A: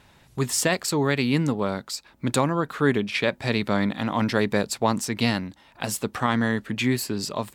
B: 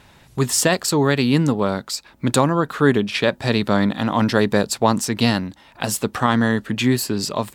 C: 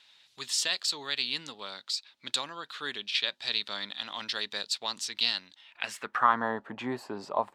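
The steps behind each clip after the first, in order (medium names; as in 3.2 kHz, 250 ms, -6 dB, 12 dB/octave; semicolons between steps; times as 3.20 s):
dynamic bell 2.2 kHz, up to -7 dB, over -46 dBFS, Q 4.5; trim +5.5 dB
band-pass sweep 3.8 kHz -> 830 Hz, 5.52–6.52 s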